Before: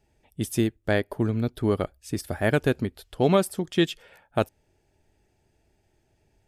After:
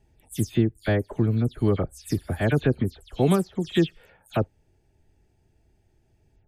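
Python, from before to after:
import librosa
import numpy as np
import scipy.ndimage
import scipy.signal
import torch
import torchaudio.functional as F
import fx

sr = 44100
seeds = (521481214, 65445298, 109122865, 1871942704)

p1 = fx.spec_delay(x, sr, highs='early', ms=120)
p2 = fx.low_shelf(p1, sr, hz=280.0, db=9.0)
p3 = fx.rider(p2, sr, range_db=3, speed_s=0.5)
p4 = p2 + F.gain(torch.from_numpy(p3), -1.5).numpy()
y = F.gain(torch.from_numpy(p4), -8.0).numpy()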